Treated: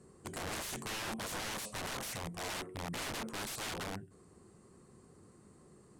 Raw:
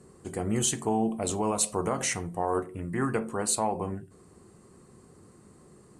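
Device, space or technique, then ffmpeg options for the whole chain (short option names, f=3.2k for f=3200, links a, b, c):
overflowing digital effects unit: -af "aeval=exprs='(mod(28.2*val(0)+1,2)-1)/28.2':c=same,lowpass=12k,volume=-5.5dB"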